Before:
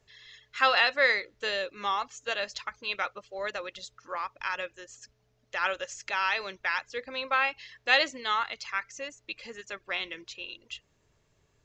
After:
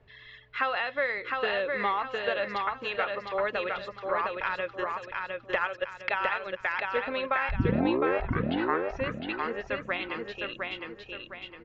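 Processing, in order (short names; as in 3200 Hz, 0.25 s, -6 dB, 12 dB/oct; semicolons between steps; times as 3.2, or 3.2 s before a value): 4.75–6.6 transient shaper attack +11 dB, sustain -9 dB; compressor 5:1, threshold -32 dBFS, peak gain reduction 14 dB; 7.49 tape start 1.57 s; air absorption 450 m; feedback echo 0.709 s, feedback 38%, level -3.5 dB; gain +9 dB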